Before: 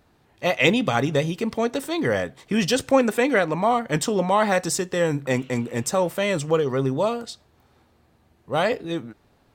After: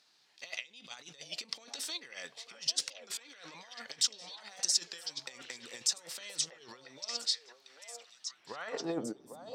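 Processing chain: resonant low shelf 100 Hz -10 dB, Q 1.5; compressor with a negative ratio -27 dBFS, ratio -0.5; band-pass sweep 4.9 kHz -> 230 Hz, 8.17–9.38 s; on a send: repeats whose band climbs or falls 796 ms, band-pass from 610 Hz, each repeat 1.4 oct, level -2 dB; on the sum: warped record 33 1/3 rpm, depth 100 cents; trim +2.5 dB

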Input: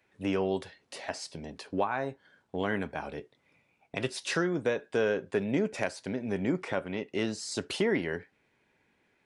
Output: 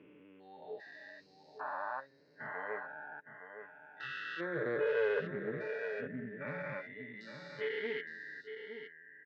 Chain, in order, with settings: spectrogram pixelated in time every 400 ms; high-pass 250 Hz 6 dB/octave; spectral noise reduction 22 dB; low-pass 2.9 kHz 24 dB/octave; peaking EQ 710 Hz -10.5 dB 0.32 oct; comb 6.8 ms, depth 46%; delay 863 ms -9 dB; loudspeaker Doppler distortion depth 0.13 ms; trim +2 dB

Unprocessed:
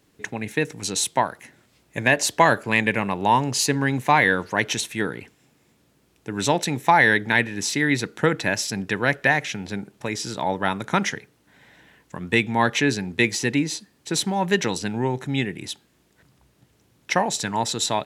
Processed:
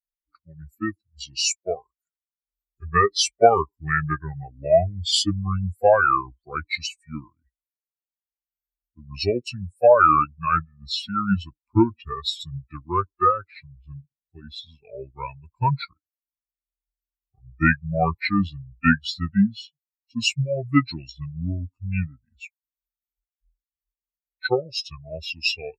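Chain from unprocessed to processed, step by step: expander on every frequency bin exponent 3; band-stop 2.4 kHz, Q 14; tape speed -30%; trim +6.5 dB

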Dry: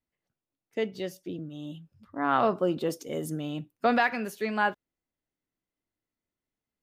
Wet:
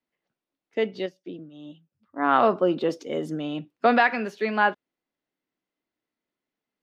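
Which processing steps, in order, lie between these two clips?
three-band isolator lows -17 dB, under 170 Hz, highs -24 dB, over 5.3 kHz; 1.06–2.26 s: upward expansion 1.5:1, over -55 dBFS; trim +5 dB

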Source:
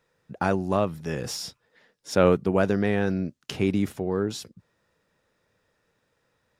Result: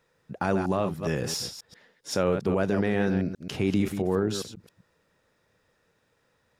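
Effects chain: chunks repeated in reverse 134 ms, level -10 dB; peak limiter -16 dBFS, peak gain reduction 8.5 dB; trim +1.5 dB

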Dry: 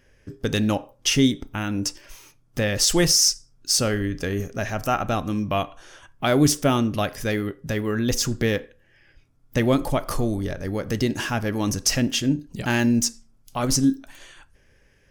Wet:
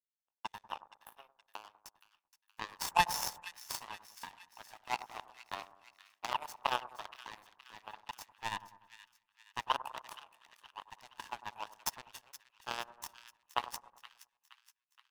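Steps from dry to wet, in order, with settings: comb filter that takes the minimum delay 1.1 ms; spectral replace 0.50–1.34 s, 1.8–10 kHz both; in parallel at +3 dB: compression, threshold -31 dBFS, peak gain reduction 16 dB; on the sum: ladder high-pass 860 Hz, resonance 75%; power-law waveshaper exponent 3; on a send: two-band feedback delay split 1.4 kHz, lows 98 ms, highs 471 ms, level -14.5 dB; on the sum: trim +5.5 dB

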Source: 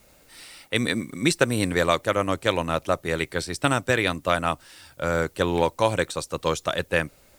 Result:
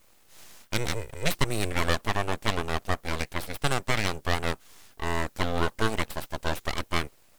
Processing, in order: full-wave rectifier; trim -2.5 dB

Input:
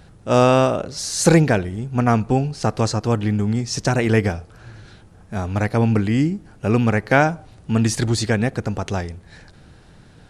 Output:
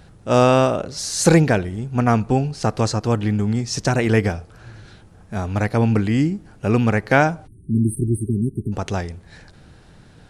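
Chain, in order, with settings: spectral selection erased 7.47–8.72 s, 430–8300 Hz

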